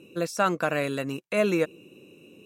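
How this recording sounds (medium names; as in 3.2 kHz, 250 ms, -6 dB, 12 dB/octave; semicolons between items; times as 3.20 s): noise floor -54 dBFS; spectral tilt -4.5 dB/octave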